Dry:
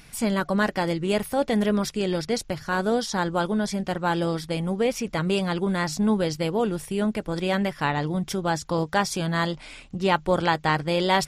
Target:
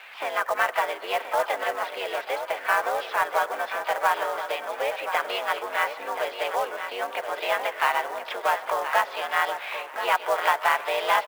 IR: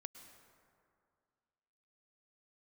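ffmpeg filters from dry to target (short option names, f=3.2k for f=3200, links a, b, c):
-filter_complex "[0:a]acompressor=threshold=-30dB:ratio=3,highpass=f=570:t=q:w=0.5412,highpass=f=570:t=q:w=1.307,lowpass=f=3k:t=q:w=0.5176,lowpass=f=3k:t=q:w=0.7071,lowpass=f=3k:t=q:w=1.932,afreqshift=76,asplit=4[a][b][c][d];[b]asetrate=35002,aresample=44100,atempo=1.25992,volume=-8dB[e];[c]asetrate=52444,aresample=44100,atempo=0.840896,volume=-13dB[f];[d]asetrate=66075,aresample=44100,atempo=0.66742,volume=-13dB[g];[a][e][f][g]amix=inputs=4:normalize=0,aecho=1:1:1028|2056|3084:0.335|0.077|0.0177,asplit=2[h][i];[1:a]atrim=start_sample=2205[j];[i][j]afir=irnorm=-1:irlink=0,volume=0.5dB[k];[h][k]amix=inputs=2:normalize=0,acrusher=bits=4:mode=log:mix=0:aa=0.000001,volume=6dB"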